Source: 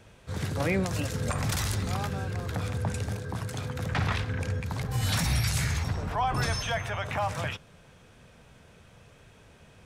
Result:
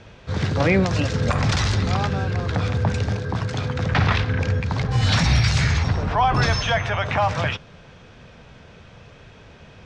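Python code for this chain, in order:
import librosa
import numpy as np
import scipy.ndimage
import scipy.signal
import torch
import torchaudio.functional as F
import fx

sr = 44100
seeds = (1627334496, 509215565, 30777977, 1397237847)

y = scipy.signal.sosfilt(scipy.signal.butter(4, 5700.0, 'lowpass', fs=sr, output='sos'), x)
y = y * librosa.db_to_amplitude(9.0)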